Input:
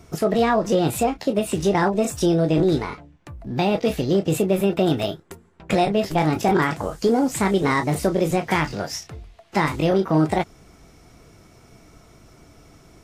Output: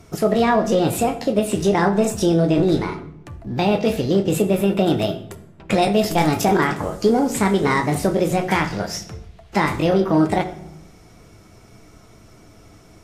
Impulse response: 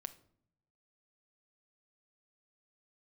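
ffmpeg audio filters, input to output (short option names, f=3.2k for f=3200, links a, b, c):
-filter_complex "[0:a]asettb=1/sr,asplit=3[a][b][c];[a]atrim=end=5.824[d];[b]atrim=start=5.82:end=6.45,asetpts=PTS-STARTPTS,afade=t=in:d=0.004:c=qsin,afade=t=out:st=0.626:d=0.004:c=qsin,highshelf=f=4.8k:g=11[e];[c]atrim=start=6.446[f];[d][e]acrossfade=d=0.004:c1=hsin:c2=qsin[g];[g][f]acrossfade=d=0.004:c1=qsin:c2=hsin[h];[1:a]atrim=start_sample=2205,asetrate=27783,aresample=44100[i];[h][i]afir=irnorm=-1:irlink=0,volume=3dB"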